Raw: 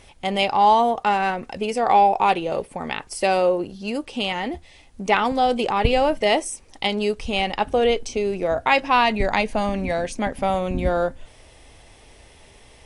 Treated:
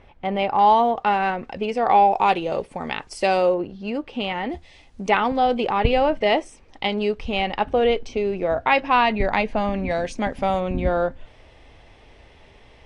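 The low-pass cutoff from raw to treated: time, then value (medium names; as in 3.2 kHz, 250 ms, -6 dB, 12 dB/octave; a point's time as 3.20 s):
1.9 kHz
from 0.59 s 3.5 kHz
from 2.12 s 6.4 kHz
from 3.54 s 2.7 kHz
from 4.50 s 6.3 kHz
from 5.10 s 3.3 kHz
from 9.91 s 6 kHz
from 10.60 s 3.4 kHz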